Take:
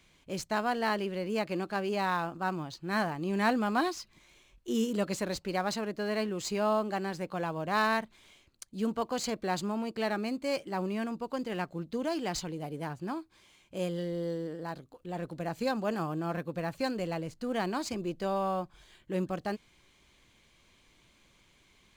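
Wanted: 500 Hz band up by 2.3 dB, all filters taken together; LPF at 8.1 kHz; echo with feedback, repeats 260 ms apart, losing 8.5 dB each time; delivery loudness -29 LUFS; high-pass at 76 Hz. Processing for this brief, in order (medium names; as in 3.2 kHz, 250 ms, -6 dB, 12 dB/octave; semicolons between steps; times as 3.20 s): high-pass 76 Hz; low-pass 8.1 kHz; peaking EQ 500 Hz +3 dB; feedback delay 260 ms, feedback 38%, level -8.5 dB; trim +2.5 dB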